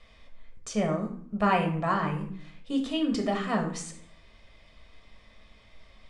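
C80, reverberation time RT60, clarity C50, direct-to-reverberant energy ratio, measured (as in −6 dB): 12.0 dB, 0.55 s, 8.5 dB, 2.0 dB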